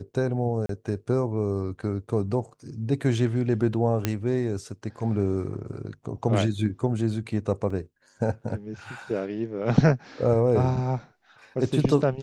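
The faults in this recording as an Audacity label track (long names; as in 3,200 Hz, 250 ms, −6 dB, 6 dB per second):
0.660000	0.690000	drop-out 33 ms
4.050000	4.050000	click −9 dBFS
7.700000	7.700000	drop-out 4.3 ms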